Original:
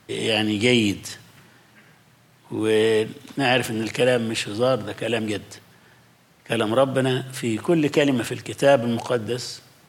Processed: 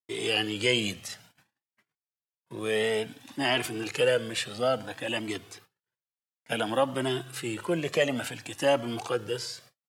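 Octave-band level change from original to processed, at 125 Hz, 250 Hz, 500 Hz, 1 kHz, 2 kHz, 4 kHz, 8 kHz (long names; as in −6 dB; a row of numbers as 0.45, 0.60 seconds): −10.5, −10.5, −7.0, −5.5, −5.0, −4.0, −4.5 decibels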